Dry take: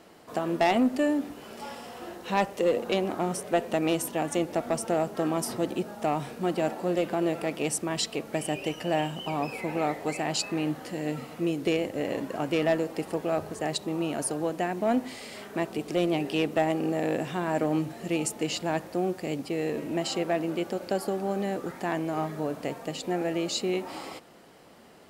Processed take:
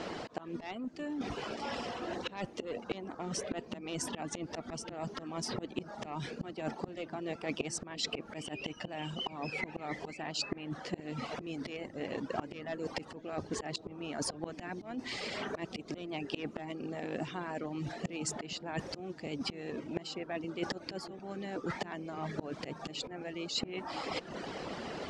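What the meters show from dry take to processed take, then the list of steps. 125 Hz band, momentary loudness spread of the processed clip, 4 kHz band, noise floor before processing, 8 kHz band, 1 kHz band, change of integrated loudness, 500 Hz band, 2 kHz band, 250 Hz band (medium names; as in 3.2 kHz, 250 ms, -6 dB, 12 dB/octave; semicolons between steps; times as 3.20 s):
-8.0 dB, 5 LU, -4.0 dB, -46 dBFS, -7.5 dB, -10.5 dB, -10.5 dB, -12.5 dB, -7.0 dB, -11.0 dB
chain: low-pass 6.2 kHz 24 dB/octave; reverb removal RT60 0.57 s; dynamic bell 580 Hz, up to -4 dB, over -37 dBFS, Q 1.5; slow attack 644 ms; reverse; compression 8:1, threshold -50 dBFS, peak gain reduction 24 dB; reverse; harmonic-percussive split percussive +5 dB; on a send: feedback echo behind a low-pass 471 ms, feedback 63%, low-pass 400 Hz, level -12.5 dB; on the sum: trim +12 dB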